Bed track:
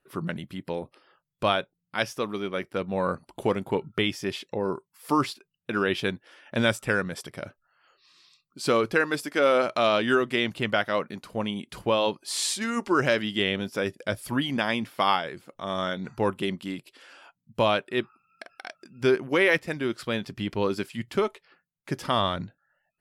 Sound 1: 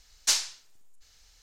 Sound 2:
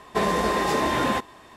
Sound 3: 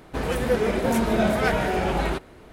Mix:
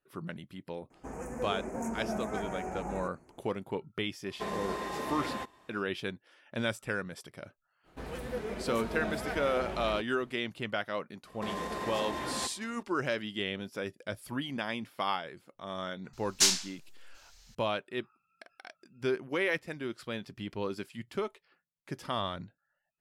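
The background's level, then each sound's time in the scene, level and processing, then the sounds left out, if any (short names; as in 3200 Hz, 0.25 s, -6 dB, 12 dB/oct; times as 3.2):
bed track -9 dB
0.9 add 3 -18 dB + EQ curve 120 Hz 0 dB, 250 Hz +6 dB, 550 Hz +2 dB, 790 Hz +7 dB, 1400 Hz +1 dB, 2500 Hz -4 dB, 3600 Hz -28 dB, 6600 Hz +12 dB, 12000 Hz -2 dB
4.25 add 2 -13.5 dB
7.83 add 3 -14.5 dB, fades 0.05 s
11.27 add 2 -10.5 dB + limiter -17 dBFS
16.13 add 1 -0.5 dB + doubler 27 ms -6 dB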